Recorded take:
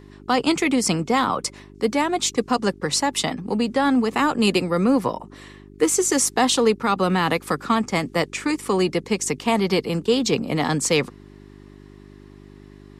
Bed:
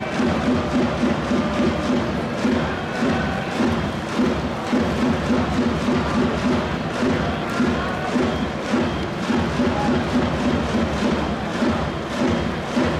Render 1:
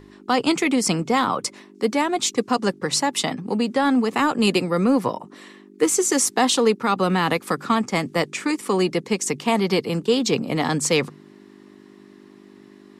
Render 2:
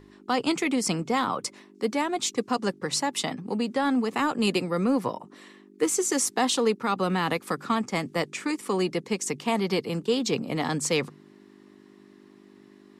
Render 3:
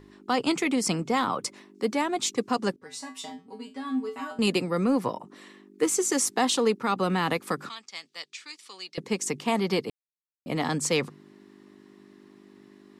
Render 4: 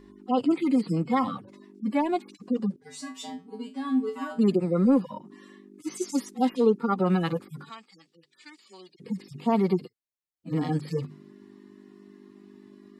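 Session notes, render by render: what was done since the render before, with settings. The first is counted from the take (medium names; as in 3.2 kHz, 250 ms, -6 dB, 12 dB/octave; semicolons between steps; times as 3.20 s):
de-hum 50 Hz, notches 3
trim -5.5 dB
2.76–4.39 s: feedback comb 87 Hz, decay 0.24 s, harmonics odd, mix 100%; 7.69–8.98 s: band-pass filter 4.2 kHz, Q 1.8; 9.90–10.46 s: mute
harmonic-percussive separation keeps harmonic; bass shelf 480 Hz +5 dB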